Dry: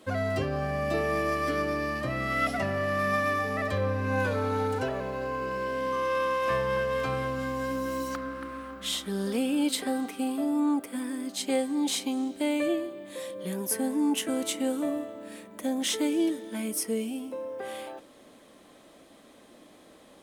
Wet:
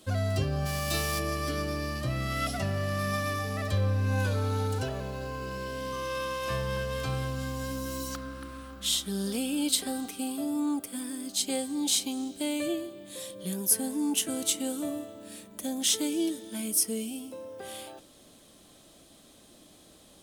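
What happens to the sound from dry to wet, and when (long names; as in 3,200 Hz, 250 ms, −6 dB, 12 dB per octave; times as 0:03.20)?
0:00.65–0:01.18: spectral envelope flattened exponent 0.6
whole clip: octave-band graphic EQ 250/500/1,000/2,000 Hz −8/−9/−9/−11 dB; level +6.5 dB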